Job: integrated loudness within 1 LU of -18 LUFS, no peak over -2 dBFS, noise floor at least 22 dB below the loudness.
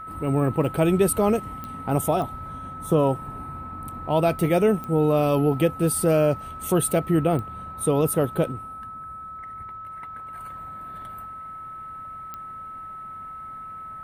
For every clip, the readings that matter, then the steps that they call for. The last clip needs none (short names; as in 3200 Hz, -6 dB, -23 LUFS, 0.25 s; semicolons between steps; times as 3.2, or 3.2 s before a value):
clicks 5; steady tone 1300 Hz; tone level -35 dBFS; loudness -23.0 LUFS; peak -8.5 dBFS; loudness target -18.0 LUFS
-> de-click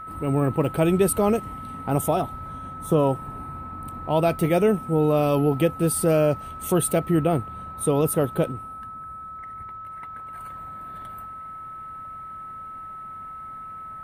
clicks 0; steady tone 1300 Hz; tone level -35 dBFS
-> notch 1300 Hz, Q 30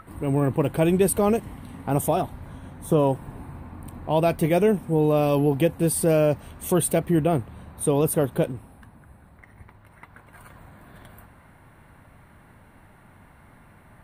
steady tone none; loudness -23.0 LUFS; peak -9.0 dBFS; loudness target -18.0 LUFS
-> gain +5 dB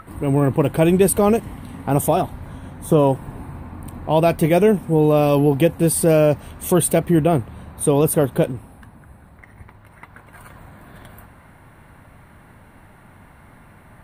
loudness -18.0 LUFS; peak -4.0 dBFS; noise floor -48 dBFS